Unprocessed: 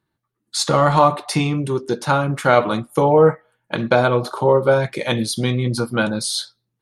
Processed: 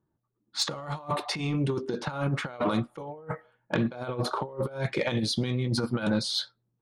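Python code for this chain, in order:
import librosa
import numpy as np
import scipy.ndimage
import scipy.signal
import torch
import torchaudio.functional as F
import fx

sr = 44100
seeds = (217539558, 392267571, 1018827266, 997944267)

y = fx.env_lowpass(x, sr, base_hz=850.0, full_db=-14.0)
y = fx.over_compress(y, sr, threshold_db=-22.0, ratio=-0.5)
y = 10.0 ** (-9.5 / 20.0) * np.tanh(y / 10.0 ** (-9.5 / 20.0))
y = F.gain(torch.from_numpy(y), -6.0).numpy()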